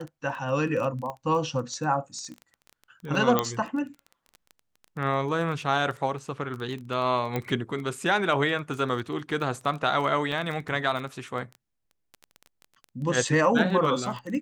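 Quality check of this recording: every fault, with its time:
surface crackle 14 per second −33 dBFS
0:01.10: click −23 dBFS
0:03.39: click −8 dBFS
0:07.36: click −15 dBFS
0:10.32: drop-out 3.1 ms

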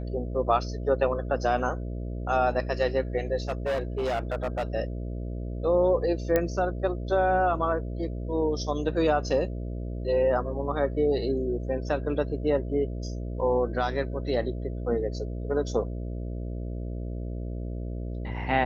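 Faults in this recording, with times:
mains buzz 60 Hz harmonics 11 −33 dBFS
0:03.48–0:04.64: clipping −24 dBFS
0:06.36: click −11 dBFS

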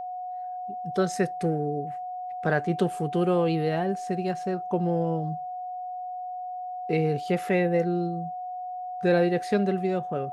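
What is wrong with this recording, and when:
whistle 730 Hz −32 dBFS

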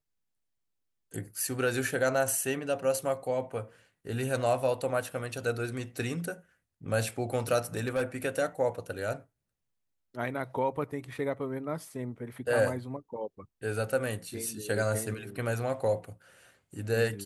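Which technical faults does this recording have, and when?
0:07.77–0:08.03: clipping −24.5 dBFS

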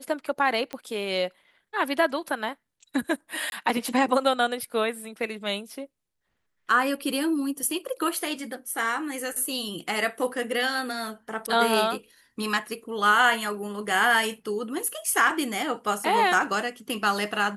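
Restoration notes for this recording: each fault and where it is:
0:00.73: click −18 dBFS
0:03.50–0:03.52: drop-out 21 ms

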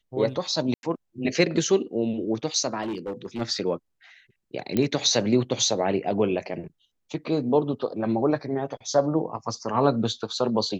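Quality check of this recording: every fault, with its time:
0:00.74–0:00.83: drop-out 91 ms
0:02.82–0:03.42: clipping −26.5 dBFS
0:04.77: click −11 dBFS

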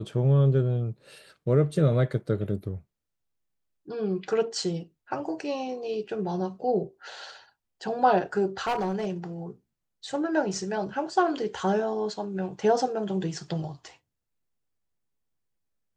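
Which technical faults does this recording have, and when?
0:08.67–0:09.08: clipping −23.5 dBFS

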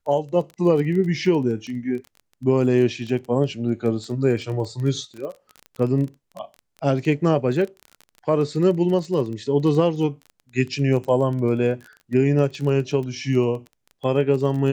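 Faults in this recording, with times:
surface crackle 19 per second −29 dBFS

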